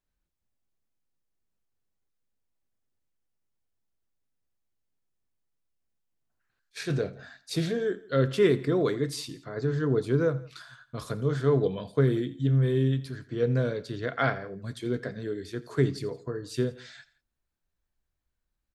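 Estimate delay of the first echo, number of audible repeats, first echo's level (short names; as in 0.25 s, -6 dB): 84 ms, 2, -19.0 dB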